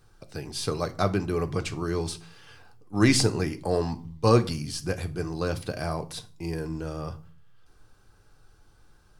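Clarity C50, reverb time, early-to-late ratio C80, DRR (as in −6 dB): 17.5 dB, 0.45 s, 23.0 dB, 6.0 dB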